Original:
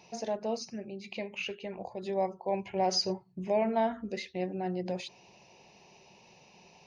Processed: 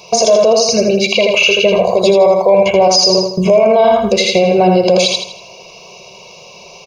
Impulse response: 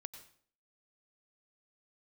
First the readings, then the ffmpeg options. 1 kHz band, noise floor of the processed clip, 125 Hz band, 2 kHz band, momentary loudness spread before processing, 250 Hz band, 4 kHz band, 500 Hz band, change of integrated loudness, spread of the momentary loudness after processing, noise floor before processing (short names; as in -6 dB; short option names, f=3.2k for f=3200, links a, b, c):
+19.5 dB, -38 dBFS, +20.5 dB, +25.5 dB, 12 LU, +19.5 dB, +24.5 dB, +24.0 dB, +23.0 dB, 3 LU, -60 dBFS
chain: -af "agate=range=-11dB:threshold=-51dB:ratio=16:detection=peak,highshelf=f=5.9k:g=5,aecho=1:1:1.8:0.98,acompressor=threshold=-35dB:ratio=2,asuperstop=centerf=1800:order=4:qfactor=2.5,equalizer=f=79:t=o:w=2.3:g=-9,aecho=1:1:81|162|243|324|405:0.631|0.246|0.096|0.0374|0.0146,alimiter=level_in=29.5dB:limit=-1dB:release=50:level=0:latency=1,volume=-1dB"